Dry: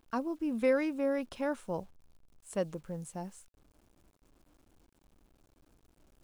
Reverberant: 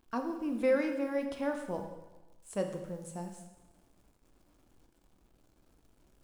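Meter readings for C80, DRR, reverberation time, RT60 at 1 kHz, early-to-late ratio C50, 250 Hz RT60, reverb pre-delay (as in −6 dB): 9.0 dB, 4.5 dB, 1.1 s, 1.2 s, 7.5 dB, 1.1 s, 5 ms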